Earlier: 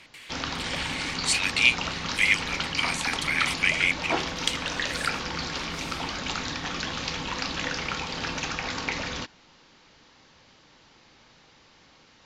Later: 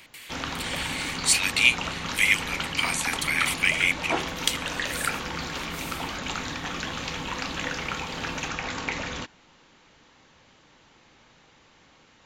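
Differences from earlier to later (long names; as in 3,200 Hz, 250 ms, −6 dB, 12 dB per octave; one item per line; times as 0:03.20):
background: add parametric band 5,000 Hz −8.5 dB 0.76 octaves
master: remove high-frequency loss of the air 57 metres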